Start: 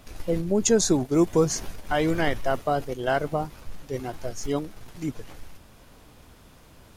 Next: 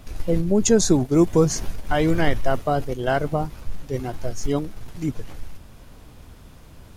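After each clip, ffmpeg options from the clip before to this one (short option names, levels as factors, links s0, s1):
-af "lowshelf=f=190:g=8,volume=1.19"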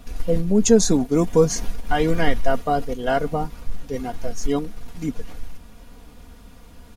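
-af "aecho=1:1:4.2:0.62,volume=0.891"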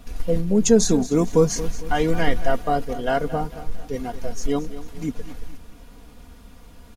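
-af "aecho=1:1:225|450|675|900:0.188|0.0829|0.0365|0.016,volume=0.891"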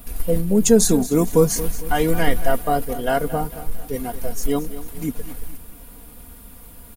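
-af "aexciter=amount=5.3:drive=7:freq=8600,volume=1.19"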